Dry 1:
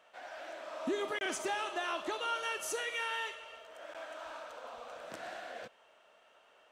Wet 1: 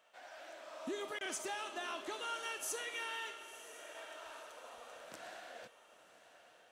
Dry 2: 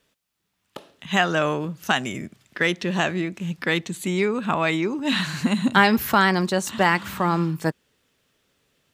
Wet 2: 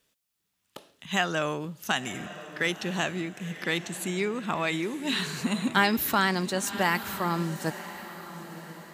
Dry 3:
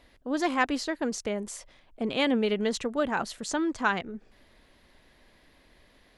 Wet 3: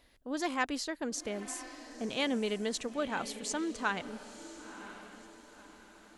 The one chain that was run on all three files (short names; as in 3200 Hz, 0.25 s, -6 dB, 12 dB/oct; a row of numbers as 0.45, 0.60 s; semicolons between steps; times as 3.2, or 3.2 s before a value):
high shelf 4600 Hz +8.5 dB; diffused feedback echo 1.002 s, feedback 41%, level -13 dB; gain -7 dB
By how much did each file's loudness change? -5.0, -6.0, -6.5 LU